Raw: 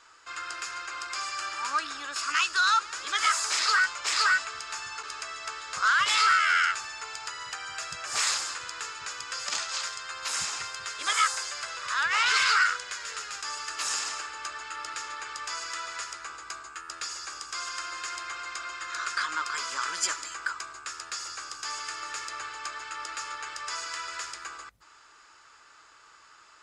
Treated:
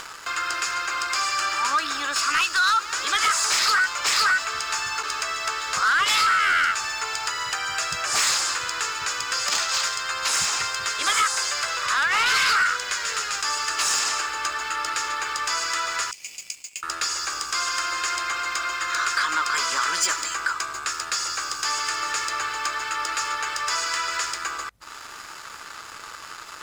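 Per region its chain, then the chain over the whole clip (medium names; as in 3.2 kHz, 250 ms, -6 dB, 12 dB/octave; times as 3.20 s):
16.11–16.83 s: steep high-pass 2.2 kHz 96 dB/octave + peaking EQ 3.8 kHz -13.5 dB 0.31 oct + compression 1.5:1, threshold -48 dBFS
whole clip: compression 2:1, threshold -28 dBFS; waveshaping leveller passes 2; upward compressor, threshold -28 dBFS; trim +2.5 dB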